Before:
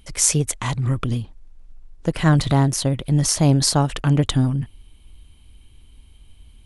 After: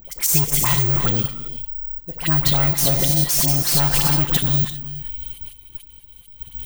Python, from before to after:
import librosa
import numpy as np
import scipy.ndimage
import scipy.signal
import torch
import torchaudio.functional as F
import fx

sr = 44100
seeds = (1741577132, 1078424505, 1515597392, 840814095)

p1 = fx.auto_swell(x, sr, attack_ms=309.0)
p2 = fx.rider(p1, sr, range_db=4, speed_s=2.0)
p3 = p1 + F.gain(torch.from_numpy(p2), -1.5).numpy()
p4 = fx.high_shelf(p3, sr, hz=6000.0, db=11.5)
p5 = fx.fold_sine(p4, sr, drive_db=11, ceiling_db=4.0)
p6 = fx.low_shelf(p5, sr, hz=360.0, db=-2.5)
p7 = fx.rev_gated(p6, sr, seeds[0], gate_ms=420, shape='flat', drr_db=8.0)
p8 = np.clip(p7, -10.0 ** (-5.0 / 20.0), 10.0 ** (-5.0 / 20.0))
p9 = fx.level_steps(p8, sr, step_db=13)
p10 = p9 + 0.5 * np.pad(p9, (int(5.8 * sr / 1000.0), 0))[:len(p9)]
p11 = fx.dispersion(p10, sr, late='highs', ms=53.0, hz=1200.0)
p12 = (np.kron(scipy.signal.resample_poly(p11, 1, 2), np.eye(2)[0]) * 2)[:len(p11)]
y = F.gain(torch.from_numpy(p12), -8.5).numpy()